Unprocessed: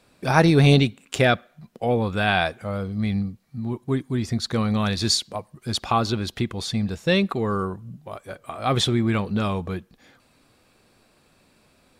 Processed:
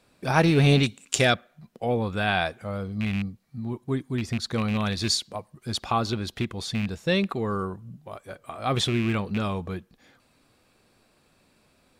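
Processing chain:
loose part that buzzes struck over −20 dBFS, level −19 dBFS
0:00.83–0:01.34: parametric band 6,800 Hz +12.5 dB 1.6 octaves
level −3.5 dB

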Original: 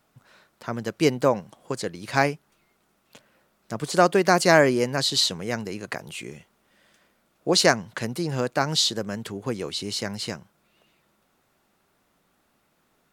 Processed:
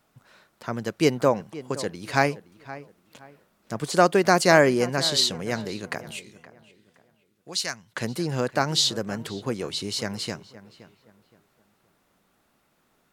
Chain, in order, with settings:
0:06.19–0:07.96: guitar amp tone stack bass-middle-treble 5-5-5
on a send: feedback echo with a low-pass in the loop 520 ms, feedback 31%, low-pass 2,500 Hz, level −16.5 dB

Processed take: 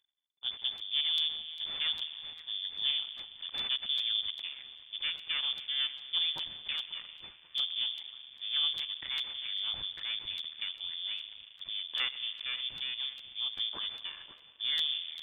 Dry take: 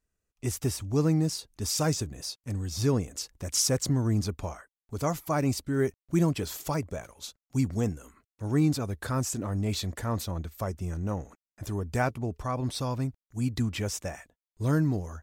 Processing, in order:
echo with a time of its own for lows and highs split 920 Hz, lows 125 ms, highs 539 ms, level −15 dB
spring reverb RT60 3.8 s, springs 38 ms, chirp 30 ms, DRR 14 dB
half-wave rectification
in parallel at −8.5 dB: bit reduction 8 bits
on the sum: voice inversion scrambler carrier 3,500 Hz
reversed playback
upward compression, threshold −36 dBFS
reversed playback
regular buffer underruns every 0.40 s, samples 512, repeat, from 0:00.77
level −7 dB

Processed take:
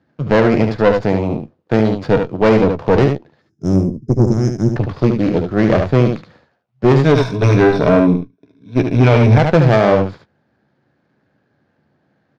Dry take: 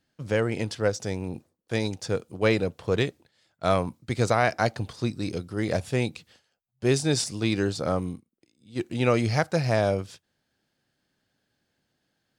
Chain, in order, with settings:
running median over 15 samples
high-pass filter 83 Hz 24 dB per octave
notch filter 7,900 Hz, Q 7.6
0:03.42–0:04.72: gain on a spectral selection 420–5,000 Hz −29 dB
0:07.04–0:09.38: EQ curve with evenly spaced ripples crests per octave 1.6, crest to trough 14 dB
tube saturation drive 23 dB, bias 0.7
high-frequency loss of the air 150 metres
double-tracking delay 14 ms −12.5 dB
single-tap delay 73 ms −6.5 dB
boost into a limiter +20 dB
level −1 dB

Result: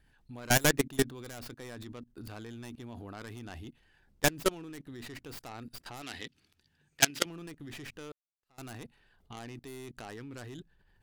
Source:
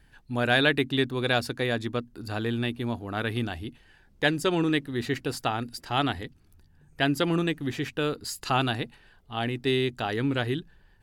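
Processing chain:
stylus tracing distortion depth 0.41 ms
0:08.12–0:08.71: fade in exponential
output level in coarse steps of 22 dB
0:06.02–0:07.26: meter weighting curve D

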